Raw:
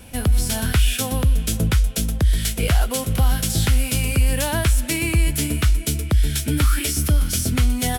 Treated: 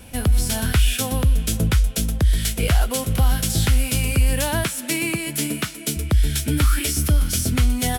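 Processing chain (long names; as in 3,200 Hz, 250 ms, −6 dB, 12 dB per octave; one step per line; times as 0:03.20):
0:04.64–0:05.97: high-pass filter 150 Hz 24 dB per octave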